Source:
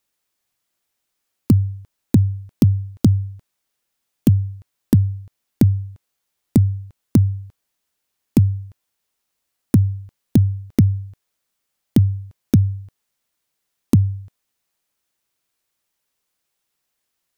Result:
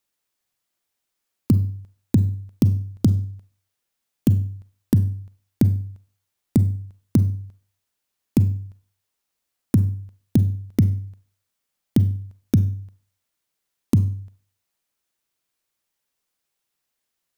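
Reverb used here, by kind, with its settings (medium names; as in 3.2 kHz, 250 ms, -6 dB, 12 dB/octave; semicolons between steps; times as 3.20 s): Schroeder reverb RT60 0.45 s, combs from 32 ms, DRR 13 dB; trim -3.5 dB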